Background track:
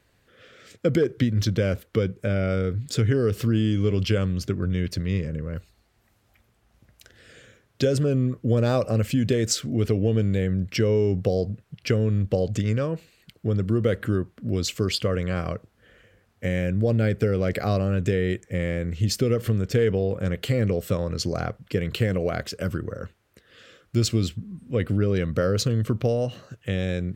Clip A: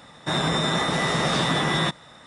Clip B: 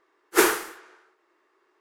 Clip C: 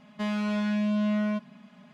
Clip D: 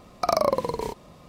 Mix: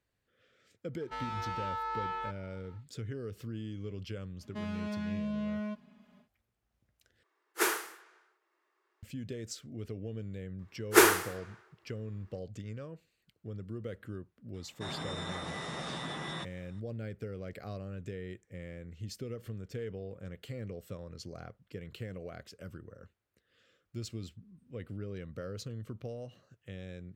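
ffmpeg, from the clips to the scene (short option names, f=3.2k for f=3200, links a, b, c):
-filter_complex "[3:a]asplit=2[a][b];[2:a]asplit=2[c][d];[0:a]volume=-18.5dB[e];[a]aeval=exprs='val(0)*sin(2*PI*1100*n/s)':c=same[f];[b]equalizer=f=390:w=1.5:g=6.5[g];[c]lowshelf=f=320:g=-11.5[h];[e]asplit=2[i][j];[i]atrim=end=7.234[k];[h]atrim=end=1.8,asetpts=PTS-STARTPTS,volume=-8.5dB[l];[j]atrim=start=9.026[m];[f]atrim=end=1.93,asetpts=PTS-STARTPTS,volume=-7.5dB,afade=t=in:d=0.1,afade=t=out:st=1.83:d=0.1,adelay=920[n];[g]atrim=end=1.93,asetpts=PTS-STARTPTS,volume=-10.5dB,afade=t=in:d=0.1,afade=t=out:st=1.83:d=0.1,adelay=4360[o];[d]atrim=end=1.8,asetpts=PTS-STARTPTS,volume=-1.5dB,afade=t=in:d=0.004:c=hsin,afade=t=out:st=1.796:d=0.004:c=hsin,adelay=10590[p];[1:a]atrim=end=2.26,asetpts=PTS-STARTPTS,volume=-16.5dB,afade=t=in:d=0.004:c=hsin,afade=t=out:st=2.256:d=0.004:c=hsin,adelay=14540[q];[k][l]acrossfade=d=0.004:c1=hsin:c2=hsin[r];[r][m]acrossfade=d=0.004:c1=hsin:c2=hsin[s];[s][n][o][p][q]amix=inputs=5:normalize=0"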